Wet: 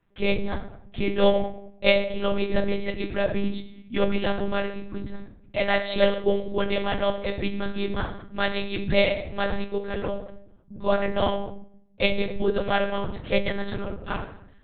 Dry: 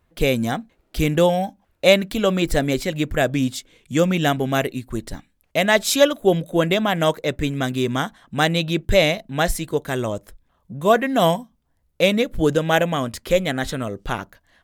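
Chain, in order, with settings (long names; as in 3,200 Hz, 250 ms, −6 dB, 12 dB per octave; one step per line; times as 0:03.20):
on a send at −3 dB: convolution reverb RT60 0.65 s, pre-delay 4 ms
on the sum: one-pitch LPC vocoder at 8 kHz 200 Hz
level −7 dB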